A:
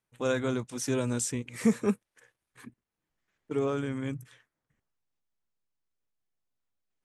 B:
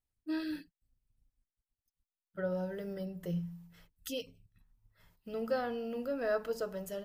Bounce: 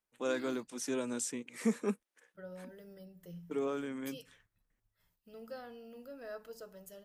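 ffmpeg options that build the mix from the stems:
ffmpeg -i stem1.wav -i stem2.wav -filter_complex "[0:a]highpass=frequency=200:width=0.5412,highpass=frequency=200:width=1.3066,volume=-5.5dB[link_01];[1:a]highshelf=frequency=4500:gain=9,volume=-13dB[link_02];[link_01][link_02]amix=inputs=2:normalize=0" out.wav

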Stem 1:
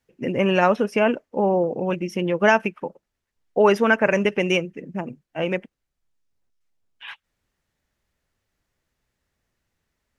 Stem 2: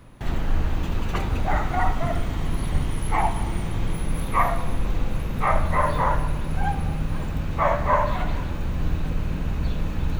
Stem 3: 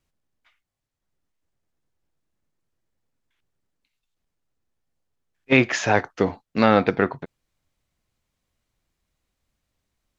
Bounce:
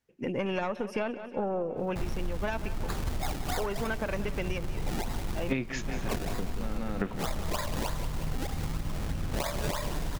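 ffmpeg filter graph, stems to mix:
ffmpeg -i stem1.wav -i stem2.wav -i stem3.wav -filter_complex "[0:a]aeval=exprs='(tanh(2.24*val(0)+0.7)-tanh(0.7))/2.24':channel_layout=same,volume=-1.5dB,asplit=3[link_01][link_02][link_03];[link_02]volume=-17.5dB[link_04];[1:a]acrusher=samples=29:mix=1:aa=0.000001:lfo=1:lforange=29:lforate=3.2,adynamicequalizer=threshold=0.0112:dfrequency=3200:dqfactor=0.7:tfrequency=3200:tqfactor=0.7:attack=5:release=100:ratio=0.375:range=2:mode=boostabove:tftype=highshelf,adelay=1750,volume=-3dB,asplit=2[link_05][link_06];[link_06]volume=-12.5dB[link_07];[2:a]equalizer=frequency=180:width_type=o:width=1.4:gain=10,volume=1dB,asplit=2[link_08][link_09];[link_09]volume=-17dB[link_10];[link_03]apad=whole_len=449371[link_11];[link_08][link_11]sidechaingate=range=-21dB:threshold=-58dB:ratio=16:detection=peak[link_12];[link_04][link_07][link_10]amix=inputs=3:normalize=0,aecho=0:1:182|364|546|728|910|1092|1274|1456:1|0.53|0.281|0.149|0.0789|0.0418|0.0222|0.0117[link_13];[link_01][link_05][link_12][link_13]amix=inputs=4:normalize=0,acompressor=threshold=-27dB:ratio=12" out.wav

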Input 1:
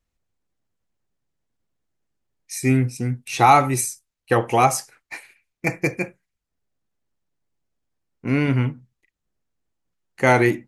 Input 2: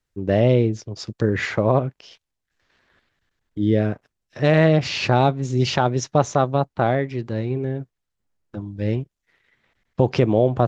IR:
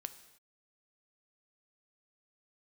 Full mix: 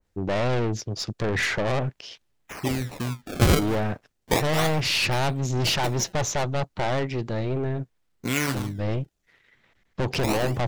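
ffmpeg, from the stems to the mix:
-filter_complex "[0:a]acrossover=split=770|2200[link_01][link_02][link_03];[link_01]acompressor=threshold=-30dB:ratio=4[link_04];[link_02]acompressor=threshold=-20dB:ratio=4[link_05];[link_03]acompressor=threshold=-42dB:ratio=4[link_06];[link_04][link_05][link_06]amix=inputs=3:normalize=0,acrusher=samples=28:mix=1:aa=0.000001:lfo=1:lforange=44.8:lforate=0.34,volume=2.5dB[link_07];[1:a]aeval=exprs='(tanh(17.8*val(0)+0.25)-tanh(0.25))/17.8':channel_layout=same,volume=3dB,asplit=2[link_08][link_09];[link_09]apad=whole_len=470790[link_10];[link_07][link_10]sidechaincompress=threshold=-35dB:ratio=4:attack=43:release=201[link_11];[link_11][link_08]amix=inputs=2:normalize=0,adynamicequalizer=threshold=0.0141:dfrequency=2000:dqfactor=0.7:tfrequency=2000:tqfactor=0.7:attack=5:release=100:ratio=0.375:range=2:mode=boostabove:tftype=highshelf"

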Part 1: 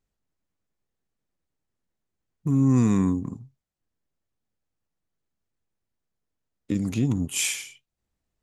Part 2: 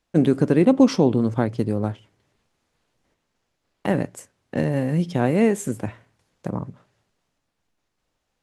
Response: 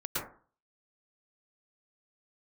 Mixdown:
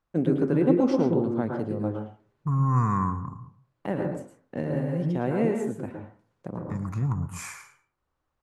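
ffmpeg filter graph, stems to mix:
-filter_complex "[0:a]firequalizer=gain_entry='entry(140,0);entry(260,-17);entry(1100,10);entry(3100,-29);entry(4400,-17)':delay=0.05:min_phase=1,volume=2dB,asplit=2[link_01][link_02];[link_02]volume=-16.5dB[link_03];[1:a]highshelf=frequency=2500:gain=-10.5,volume=-9.5dB,asplit=2[link_04][link_05];[link_05]volume=-4dB[link_06];[2:a]atrim=start_sample=2205[link_07];[link_03][link_06]amix=inputs=2:normalize=0[link_08];[link_08][link_07]afir=irnorm=-1:irlink=0[link_09];[link_01][link_04][link_09]amix=inputs=3:normalize=0,lowshelf=frequency=160:gain=-4.5"

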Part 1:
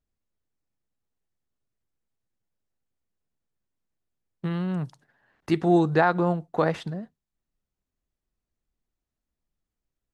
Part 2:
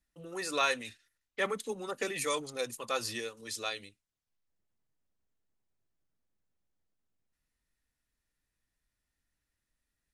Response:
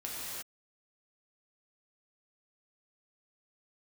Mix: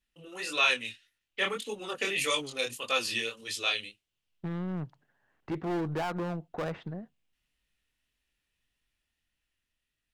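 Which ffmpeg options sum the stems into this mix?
-filter_complex "[0:a]lowpass=2500,aeval=exprs='0.422*(cos(1*acos(clip(val(0)/0.422,-1,1)))-cos(1*PI/2))+0.0106*(cos(3*acos(clip(val(0)/0.422,-1,1)))-cos(3*PI/2))+0.0237*(cos(8*acos(clip(val(0)/0.422,-1,1)))-cos(8*PI/2))':channel_layout=same,volume=22dB,asoftclip=hard,volume=-22dB,volume=-9dB[link_01];[1:a]equalizer=frequency=2900:width_type=o:width=0.74:gain=13.5,flanger=delay=19:depth=7.9:speed=1.7,volume=0.5dB[link_02];[link_01][link_02]amix=inputs=2:normalize=0,dynaudnorm=framelen=220:gausssize=13:maxgain=3dB"

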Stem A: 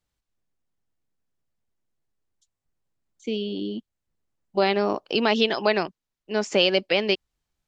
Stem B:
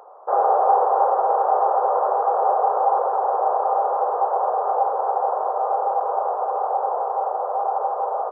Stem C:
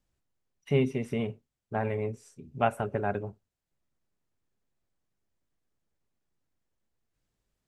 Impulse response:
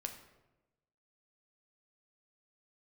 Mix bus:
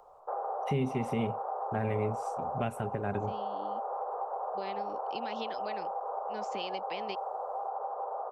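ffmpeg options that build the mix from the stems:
-filter_complex "[0:a]volume=-15dB[link_01];[1:a]volume=-11dB[link_02];[2:a]volume=2dB[link_03];[link_01][link_02]amix=inputs=2:normalize=0,acompressor=threshold=-32dB:ratio=6,volume=0dB[link_04];[link_03][link_04]amix=inputs=2:normalize=0,acrossover=split=350|3000[link_05][link_06][link_07];[link_06]acompressor=threshold=-29dB:ratio=6[link_08];[link_05][link_08][link_07]amix=inputs=3:normalize=0,alimiter=limit=-20.5dB:level=0:latency=1:release=270"

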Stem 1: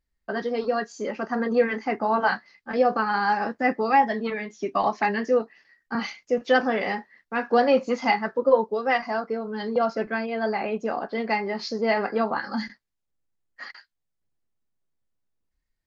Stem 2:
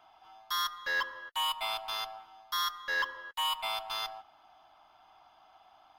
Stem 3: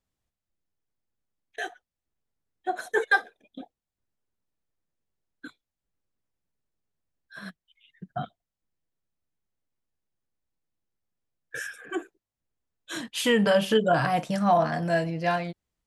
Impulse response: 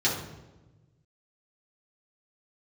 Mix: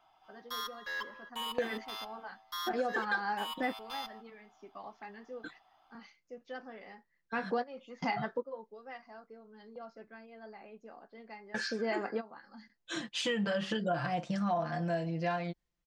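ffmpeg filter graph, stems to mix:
-filter_complex "[0:a]volume=-5dB[link_01];[1:a]volume=-7dB[link_02];[2:a]lowpass=frequency=6900:width=0.5412,lowpass=frequency=6900:width=1.3066,aecho=1:1:5.8:0.61,volume=-4dB,asplit=2[link_03][link_04];[link_04]apad=whole_len=699547[link_05];[link_01][link_05]sidechaingate=range=-19dB:threshold=-55dB:ratio=16:detection=peak[link_06];[link_06][link_02][link_03]amix=inputs=3:normalize=0,acompressor=threshold=-32dB:ratio=3"

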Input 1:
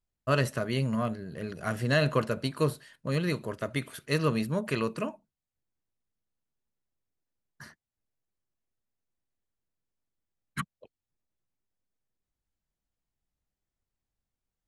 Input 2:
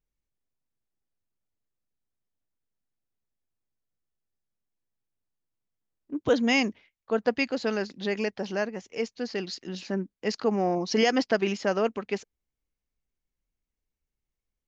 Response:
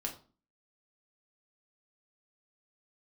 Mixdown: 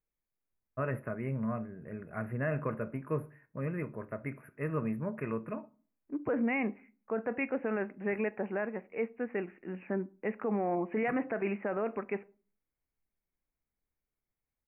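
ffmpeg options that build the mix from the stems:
-filter_complex "[0:a]lowpass=frequency=2500:poles=1,adelay=500,volume=-8.5dB,asplit=2[link_01][link_02];[link_02]volume=-9dB[link_03];[1:a]lowshelf=frequency=160:gain=-7.5,volume=-3dB,asplit=2[link_04][link_05];[link_05]volume=-12.5dB[link_06];[2:a]atrim=start_sample=2205[link_07];[link_03][link_06]amix=inputs=2:normalize=0[link_08];[link_08][link_07]afir=irnorm=-1:irlink=0[link_09];[link_01][link_04][link_09]amix=inputs=3:normalize=0,asuperstop=centerf=5300:order=20:qfactor=0.7,alimiter=limit=-23dB:level=0:latency=1:release=22"

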